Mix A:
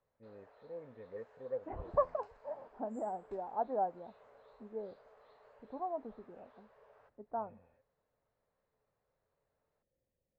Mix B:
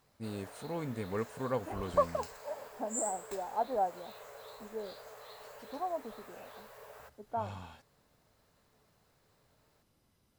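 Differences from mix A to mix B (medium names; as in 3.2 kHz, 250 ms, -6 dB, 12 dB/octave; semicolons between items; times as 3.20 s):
first voice: remove cascade formant filter e; background +8.5 dB; master: remove tape spacing loss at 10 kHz 33 dB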